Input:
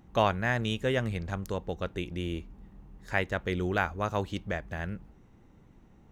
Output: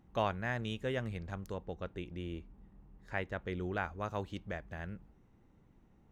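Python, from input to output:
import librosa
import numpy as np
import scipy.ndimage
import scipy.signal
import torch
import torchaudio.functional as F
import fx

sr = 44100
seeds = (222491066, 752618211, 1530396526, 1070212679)

y = fx.high_shelf(x, sr, hz=4400.0, db=fx.steps((0.0, -4.5), (1.53, -11.0), (3.83, -4.5)))
y = F.gain(torch.from_numpy(y), -7.5).numpy()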